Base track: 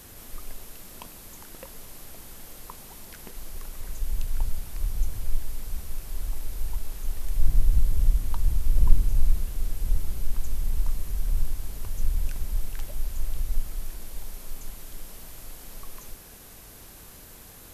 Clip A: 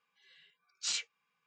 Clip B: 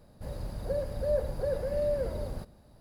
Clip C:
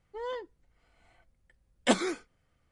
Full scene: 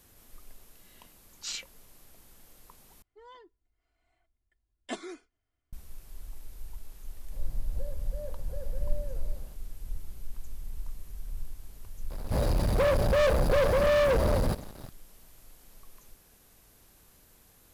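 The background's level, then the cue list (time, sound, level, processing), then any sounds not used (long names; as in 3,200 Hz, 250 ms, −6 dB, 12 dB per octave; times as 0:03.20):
base track −12.5 dB
0:00.60: mix in A −2.5 dB
0:03.02: overwrite with C −14 dB + comb filter 2.9 ms, depth 75%
0:07.10: mix in B −14 dB
0:12.10: mix in B −2.5 dB + leveller curve on the samples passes 5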